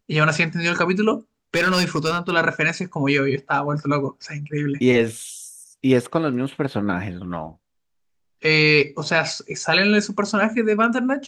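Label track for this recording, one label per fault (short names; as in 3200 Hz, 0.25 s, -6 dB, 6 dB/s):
1.540000	2.330000	clipped -14.5 dBFS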